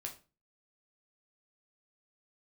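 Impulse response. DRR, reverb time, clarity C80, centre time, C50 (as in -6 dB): 0.5 dB, 0.35 s, 17.5 dB, 14 ms, 12.0 dB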